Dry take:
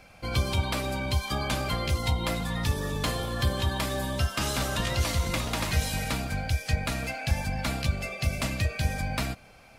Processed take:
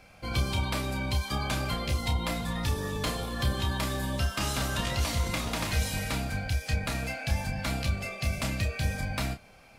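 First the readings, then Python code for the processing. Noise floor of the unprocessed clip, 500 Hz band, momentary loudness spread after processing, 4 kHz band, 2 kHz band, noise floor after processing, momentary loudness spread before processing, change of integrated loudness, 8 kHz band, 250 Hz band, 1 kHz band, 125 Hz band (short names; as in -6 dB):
-53 dBFS, -3.0 dB, 3 LU, -1.5 dB, -1.5 dB, -54 dBFS, 3 LU, -1.5 dB, -1.5 dB, -1.0 dB, -2.0 dB, -1.5 dB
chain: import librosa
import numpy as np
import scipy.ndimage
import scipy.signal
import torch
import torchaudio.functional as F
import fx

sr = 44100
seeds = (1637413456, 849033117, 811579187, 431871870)

y = fx.doubler(x, sr, ms=30.0, db=-6.5)
y = y * librosa.db_to_amplitude(-2.5)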